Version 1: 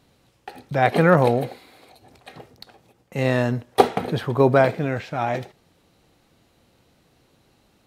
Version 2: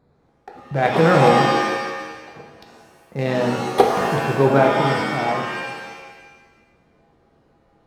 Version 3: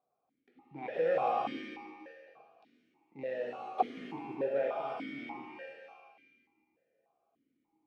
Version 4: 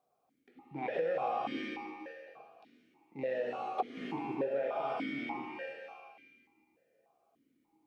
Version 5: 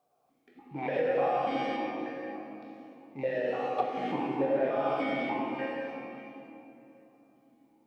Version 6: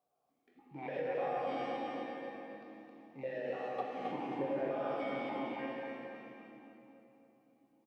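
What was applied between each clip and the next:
local Wiener filter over 15 samples; pitch-shifted reverb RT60 1.3 s, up +7 st, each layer -2 dB, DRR 2 dB; trim -1 dB
stepped vowel filter 3.4 Hz; trim -8.5 dB
compression 6:1, threshold -35 dBFS, peak gain reduction 12.5 dB; trim +4.5 dB
simulated room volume 120 m³, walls hard, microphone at 0.38 m; trim +3 dB
feedback delay 266 ms, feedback 42%, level -4 dB; trim -9 dB

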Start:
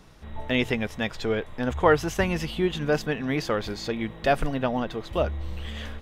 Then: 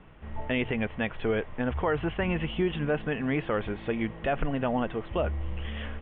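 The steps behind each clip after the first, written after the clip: steep low-pass 3.2 kHz 72 dB/octave; peak limiter -18 dBFS, peak gain reduction 10.5 dB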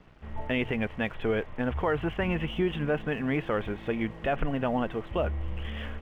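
crossover distortion -59 dBFS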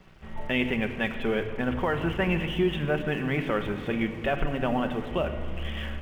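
treble shelf 3.6 kHz +9.5 dB; simulated room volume 3600 m³, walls mixed, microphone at 1.1 m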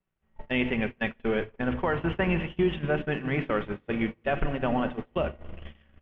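low-pass 3.3 kHz 12 dB/octave; gate -28 dBFS, range -30 dB

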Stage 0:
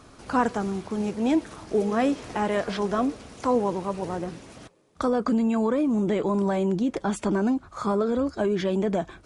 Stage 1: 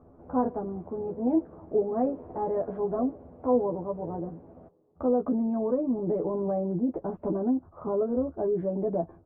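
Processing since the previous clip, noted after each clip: four-pole ladder low-pass 900 Hz, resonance 25%; doubling 12 ms -2.5 dB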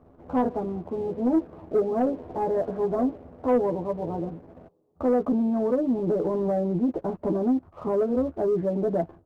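waveshaping leveller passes 1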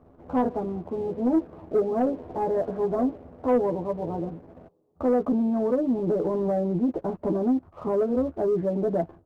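no audible change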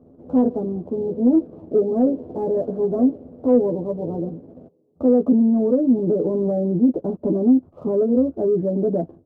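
graphic EQ 125/250/500/1000/2000 Hz +8/+11/+9/-3/-9 dB; trim -5.5 dB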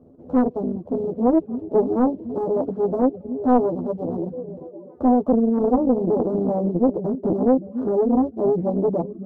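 repeats whose band climbs or falls 283 ms, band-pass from 180 Hz, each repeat 0.7 oct, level -8.5 dB; reverb removal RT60 0.51 s; loudspeaker Doppler distortion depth 0.8 ms

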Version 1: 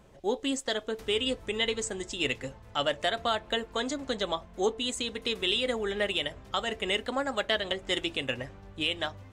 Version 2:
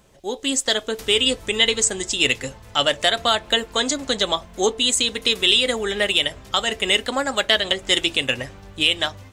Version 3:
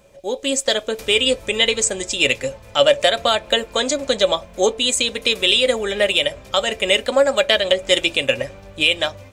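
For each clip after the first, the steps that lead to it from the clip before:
treble shelf 2.9 kHz +11 dB; level rider gain up to 7.5 dB
small resonant body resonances 560/2400 Hz, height 14 dB, ringing for 50 ms

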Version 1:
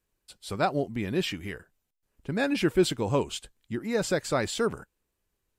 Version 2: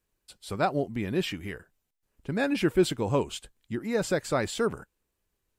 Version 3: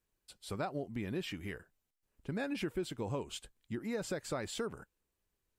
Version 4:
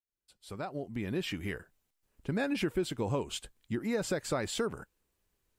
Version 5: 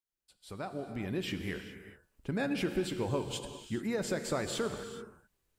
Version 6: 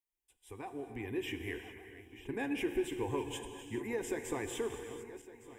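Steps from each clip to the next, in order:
dynamic bell 5 kHz, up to -3 dB, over -48 dBFS, Q 0.73
compression 5:1, threshold -29 dBFS, peak gain reduction 11.5 dB; trim -5 dB
fade-in on the opening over 1.37 s; trim +5.5 dB
gated-style reverb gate 450 ms flat, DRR 7 dB; trim -1.5 dB
backward echo that repeats 580 ms, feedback 61%, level -14 dB; static phaser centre 900 Hz, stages 8

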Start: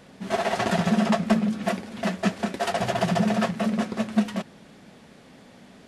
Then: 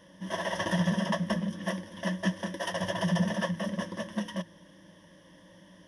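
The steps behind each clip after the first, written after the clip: rippled EQ curve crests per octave 1.2, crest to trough 17 dB; trim -8.5 dB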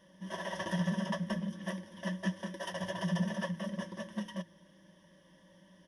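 comb 5.2 ms, depth 40%; trim -7.5 dB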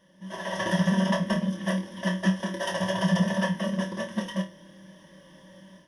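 level rider gain up to 9 dB; on a send: flutter echo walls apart 4.5 m, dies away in 0.24 s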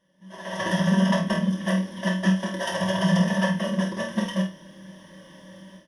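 level rider gain up to 12.5 dB; doubling 48 ms -7 dB; trim -8.5 dB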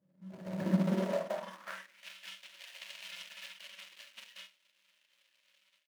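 median filter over 41 samples; high-pass sweep 130 Hz -> 2.8 kHz, 0.49–2.08 s; trim -6.5 dB

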